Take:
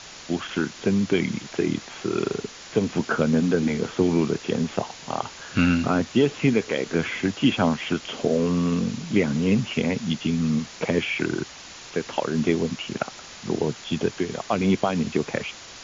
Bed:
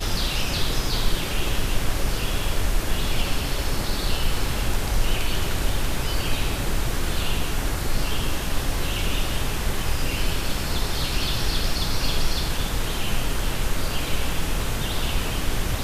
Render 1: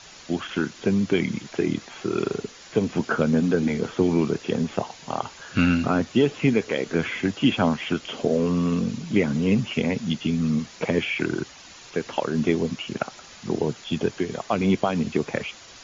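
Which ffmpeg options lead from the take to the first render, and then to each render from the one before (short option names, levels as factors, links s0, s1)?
-af "afftdn=nr=6:nf=-42"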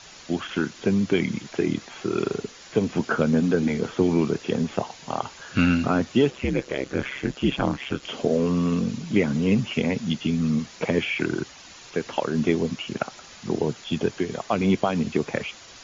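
-filter_complex "[0:a]asettb=1/sr,asplit=3[s0][s1][s2];[s0]atrim=end=6.304[s3];[s1]atrim=start=6.3:end=8.03,asetpts=PTS-STARTPTS,afade=t=in:d=0.004:c=qsin,afade=t=out:st=1.726:d=0.004:c=qsin,aeval=exprs='val(0)*sin(2*PI*66*n/s)':c=same[s4];[s2]atrim=start=8.026[s5];[s3][s4]acrossfade=d=0.004:c1=hsin:c2=qsin[s6];[s6][s5]acrossfade=d=0.004:c1=qsin:c2=hsin"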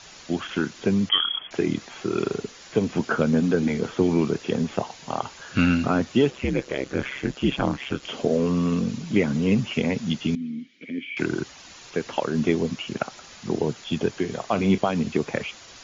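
-filter_complex "[0:a]asettb=1/sr,asplit=3[s0][s1][s2];[s0]atrim=end=1.094[s3];[s1]atrim=start=1.09:end=1.51,asetpts=PTS-STARTPTS,afade=t=in:d=0.004:c=qsin,afade=t=out:st=0.416:d=0.004:c=qsin,lowpass=f=3000:t=q:w=0.5098,lowpass=f=3000:t=q:w=0.6013,lowpass=f=3000:t=q:w=0.9,lowpass=f=3000:t=q:w=2.563,afreqshift=-3500[s4];[s2]atrim=start=1.506[s5];[s3][s4]acrossfade=d=0.004:c1=hsin:c2=qsin[s6];[s6][s5]acrossfade=d=0.004:c1=qsin:c2=hsin,asettb=1/sr,asplit=3[s7][s8][s9];[s7]atrim=end=10.354[s10];[s8]atrim=start=10.35:end=11.17,asetpts=PTS-STARTPTS,afade=t=in:d=0.004:c=qsin,afade=t=out:st=0.816:d=0.004:c=qsin,asplit=3[s11][s12][s13];[s11]bandpass=f=270:t=q:w=8,volume=1[s14];[s12]bandpass=f=2290:t=q:w=8,volume=0.501[s15];[s13]bandpass=f=3010:t=q:w=8,volume=0.355[s16];[s14][s15][s16]amix=inputs=3:normalize=0[s17];[s9]atrim=start=11.166[s18];[s10][s17]acrossfade=d=0.004:c1=hsin:c2=qsin[s19];[s19][s18]acrossfade=d=0.004:c1=qsin:c2=hsin,asettb=1/sr,asplit=3[s20][s21][s22];[s20]atrim=end=14.194[s23];[s21]atrim=start=14.19:end=14.78,asetpts=PTS-STARTPTS,afade=t=in:d=0.004:c=qsin,afade=t=out:st=0.586:d=0.004:c=qsin,asplit=2[s24][s25];[s25]adelay=41,volume=0.224[s26];[s24][s26]amix=inputs=2:normalize=0,atrim=end_sample=26019[s27];[s22]atrim=start=14.776[s28];[s23][s27]acrossfade=d=0.004:c1=hsin:c2=qsin[s29];[s29][s28]acrossfade=d=0.004:c1=qsin:c2=hsin"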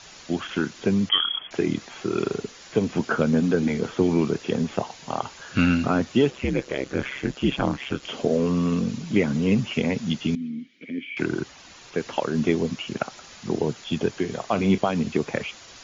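-filter_complex "[0:a]asettb=1/sr,asplit=3[s0][s1][s2];[s0]atrim=end=10.484[s3];[s1]atrim=start=10.48:end=11.98,asetpts=PTS-STARTPTS,afade=t=in:d=0.004:c=qsin,afade=t=out:st=1.496:d=0.004:c=qsin,highshelf=f=3900:g=-4[s4];[s2]atrim=start=11.976[s5];[s3][s4]acrossfade=d=0.004:c1=hsin:c2=qsin[s6];[s6][s5]acrossfade=d=0.004:c1=qsin:c2=hsin"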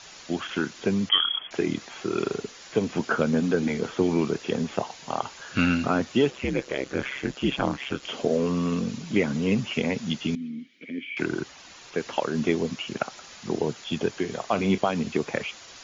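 -af "lowshelf=f=260:g=-5.5"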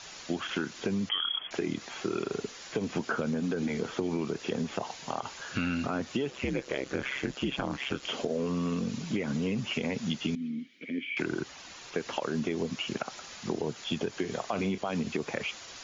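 -af "alimiter=limit=0.168:level=0:latency=1:release=71,acompressor=threshold=0.0447:ratio=6"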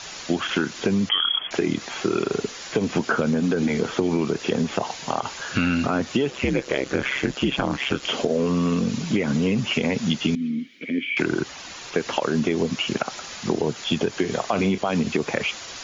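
-af "volume=2.82"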